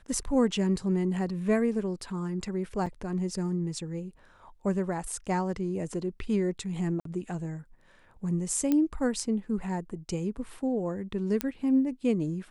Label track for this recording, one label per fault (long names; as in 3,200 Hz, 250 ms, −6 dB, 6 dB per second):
2.860000	2.870000	drop-out 5.5 ms
7.000000	7.050000	drop-out 53 ms
8.720000	8.720000	click −14 dBFS
11.410000	11.410000	click −12 dBFS